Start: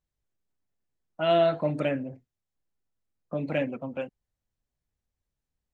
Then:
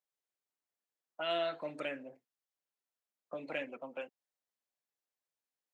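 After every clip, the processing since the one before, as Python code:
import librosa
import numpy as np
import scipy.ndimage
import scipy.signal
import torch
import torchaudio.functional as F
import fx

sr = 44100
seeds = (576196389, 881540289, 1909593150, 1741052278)

y = scipy.signal.sosfilt(scipy.signal.butter(2, 490.0, 'highpass', fs=sr, output='sos'), x)
y = fx.dynamic_eq(y, sr, hz=700.0, q=0.85, threshold_db=-37.0, ratio=4.0, max_db=-8)
y = F.gain(torch.from_numpy(y), -4.0).numpy()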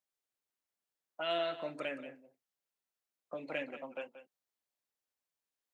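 y = x + 10.0 ** (-13.0 / 20.0) * np.pad(x, (int(181 * sr / 1000.0), 0))[:len(x)]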